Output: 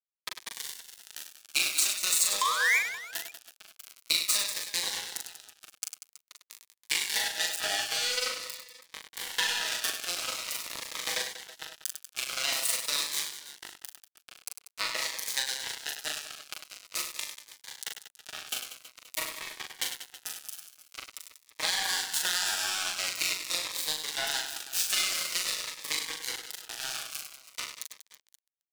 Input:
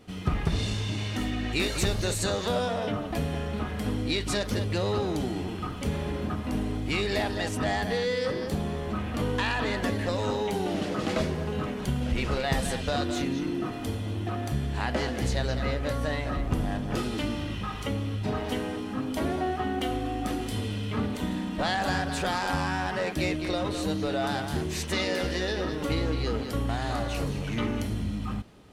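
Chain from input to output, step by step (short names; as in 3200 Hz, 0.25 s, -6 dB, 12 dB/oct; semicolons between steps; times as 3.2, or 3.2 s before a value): comb 6.2 ms, depth 83%; painted sound rise, 2.41–2.79, 1000–2500 Hz -17 dBFS; in parallel at -11 dB: crossover distortion -41.5 dBFS; on the sum: HPF 520 Hz 12 dB/oct; high shelf 8800 Hz +10 dB; crossover distortion -25 dBFS; compressor 6:1, threshold -33 dBFS, peak gain reduction 16.5 dB; tilt shelf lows -9 dB, about 750 Hz; reverse bouncing-ball echo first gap 40 ms, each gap 1.5×, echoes 5; cascading phaser falling 0.47 Hz; gain +3 dB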